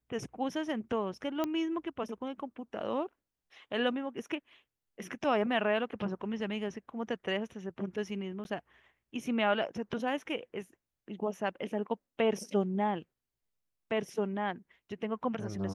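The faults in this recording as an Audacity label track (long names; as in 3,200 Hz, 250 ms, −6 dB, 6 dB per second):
1.440000	1.440000	click −19 dBFS
8.440000	8.450000	drop-out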